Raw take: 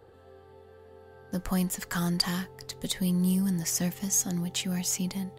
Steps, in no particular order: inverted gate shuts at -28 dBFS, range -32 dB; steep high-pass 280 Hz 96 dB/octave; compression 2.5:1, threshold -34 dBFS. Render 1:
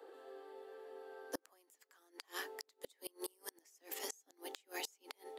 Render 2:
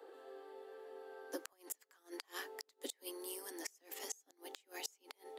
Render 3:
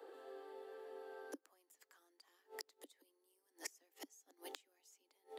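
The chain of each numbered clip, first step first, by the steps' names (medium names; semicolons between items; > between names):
steep high-pass > compression > inverted gate; compression > steep high-pass > inverted gate; compression > inverted gate > steep high-pass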